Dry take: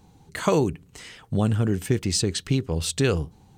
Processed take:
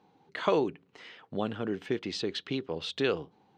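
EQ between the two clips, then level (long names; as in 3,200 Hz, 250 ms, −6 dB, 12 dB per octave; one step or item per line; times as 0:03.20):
high-frequency loss of the air 250 metres
dynamic equaliser 3,500 Hz, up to +7 dB, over −54 dBFS, Q 2.6
high-pass filter 320 Hz 12 dB per octave
−2.5 dB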